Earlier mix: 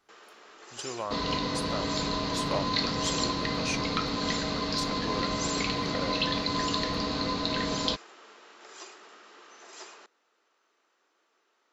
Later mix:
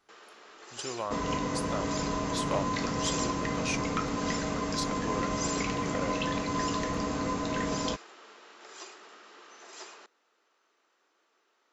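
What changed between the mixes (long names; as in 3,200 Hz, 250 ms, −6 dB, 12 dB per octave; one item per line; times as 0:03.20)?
speech: add linear-phase brick-wall low-pass 12,000 Hz
second sound: remove low-pass with resonance 4,200 Hz, resonance Q 7.3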